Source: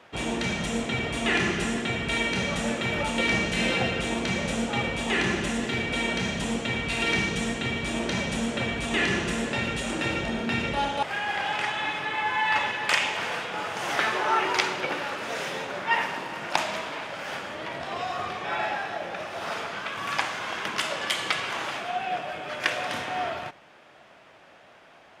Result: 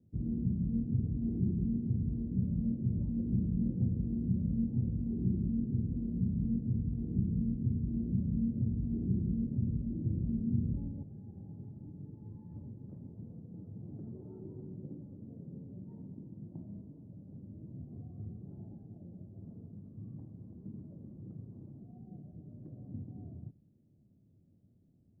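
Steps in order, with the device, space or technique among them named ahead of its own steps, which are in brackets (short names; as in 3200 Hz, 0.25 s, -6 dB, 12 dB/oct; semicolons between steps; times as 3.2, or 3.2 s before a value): the neighbour's flat through the wall (LPF 230 Hz 24 dB/oct; bell 100 Hz +7 dB 0.52 oct)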